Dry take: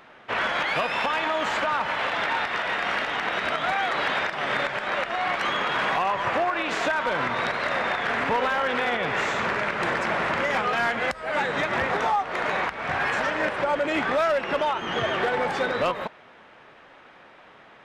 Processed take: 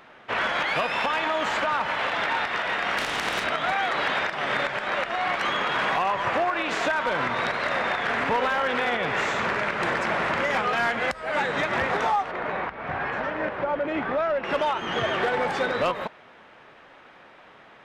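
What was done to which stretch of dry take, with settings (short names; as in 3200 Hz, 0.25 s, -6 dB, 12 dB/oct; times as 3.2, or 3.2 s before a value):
2.97–3.43 spectral contrast lowered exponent 0.6
12.31–14.44 tape spacing loss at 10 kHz 29 dB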